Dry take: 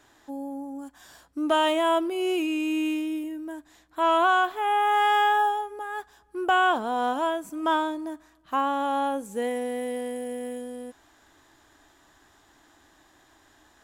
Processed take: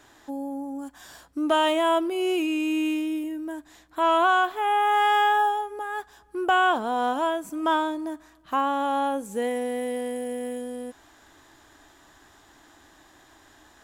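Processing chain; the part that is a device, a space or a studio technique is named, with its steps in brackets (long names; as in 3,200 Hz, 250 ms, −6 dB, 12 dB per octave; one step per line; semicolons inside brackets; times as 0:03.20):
parallel compression (in parallel at −4 dB: downward compressor, threshold −38 dBFS, peak gain reduction 18.5 dB)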